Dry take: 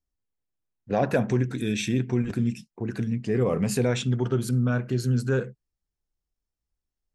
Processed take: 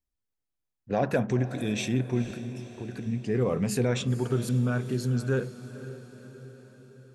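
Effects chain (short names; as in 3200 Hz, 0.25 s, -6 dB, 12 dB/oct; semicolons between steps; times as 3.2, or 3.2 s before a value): 2.23–3.06 compressor, threshold -31 dBFS, peak gain reduction 10 dB; on a send: diffused feedback echo 0.486 s, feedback 57%, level -14 dB; on the sum: gain -2.5 dB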